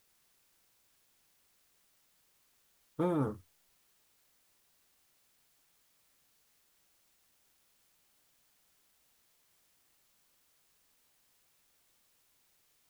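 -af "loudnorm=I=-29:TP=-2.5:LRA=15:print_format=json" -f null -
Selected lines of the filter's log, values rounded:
"input_i" : "-35.5",
"input_tp" : "-21.1",
"input_lra" : "16.8",
"input_thresh" : "-58.4",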